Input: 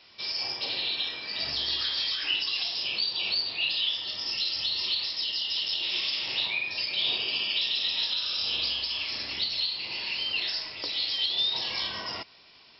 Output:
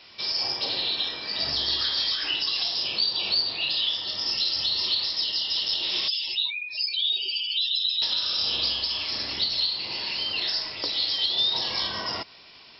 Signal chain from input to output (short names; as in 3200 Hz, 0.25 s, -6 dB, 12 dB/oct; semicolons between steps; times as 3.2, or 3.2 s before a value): 6.08–8.02 spectral contrast raised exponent 2.5; dynamic EQ 2500 Hz, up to -8 dB, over -45 dBFS, Q 2; gain +5.5 dB